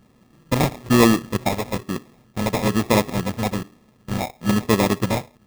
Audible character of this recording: a buzz of ramps at a fixed pitch in blocks of 32 samples; phasing stages 6, 1.1 Hz, lowest notch 310–2100 Hz; aliases and images of a low sample rate 1500 Hz, jitter 0%

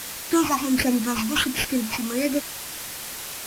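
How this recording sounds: aliases and images of a low sample rate 7600 Hz, jitter 0%; phasing stages 8, 1.4 Hz, lowest notch 480–1200 Hz; a quantiser's noise floor 6-bit, dither triangular; AAC

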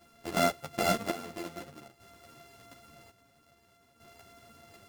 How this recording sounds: a buzz of ramps at a fixed pitch in blocks of 64 samples; chopped level 0.5 Hz, depth 65%, duty 55%; a shimmering, thickened sound

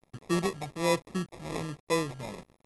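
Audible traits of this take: a quantiser's noise floor 8-bit, dither none; phasing stages 2, 1.2 Hz, lowest notch 410–2100 Hz; aliases and images of a low sample rate 1500 Hz, jitter 0%; MP2

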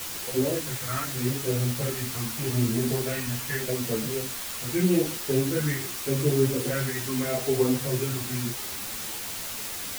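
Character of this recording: phasing stages 2, 0.82 Hz, lowest notch 530–2200 Hz; a quantiser's noise floor 6-bit, dither triangular; a shimmering, thickened sound

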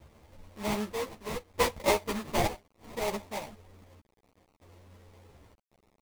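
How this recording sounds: aliases and images of a low sample rate 1500 Hz, jitter 20%; chopped level 0.65 Hz, depth 65%, duty 60%; a quantiser's noise floor 10-bit, dither none; a shimmering, thickened sound

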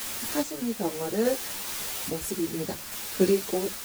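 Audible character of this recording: a quantiser's noise floor 6-bit, dither triangular; random-step tremolo 2.4 Hz; a shimmering, thickened sound

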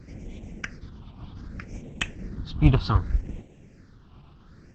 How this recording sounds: tremolo saw down 0.73 Hz, depth 40%; a quantiser's noise floor 12-bit, dither none; phasing stages 6, 0.65 Hz, lowest notch 500–1300 Hz; Opus

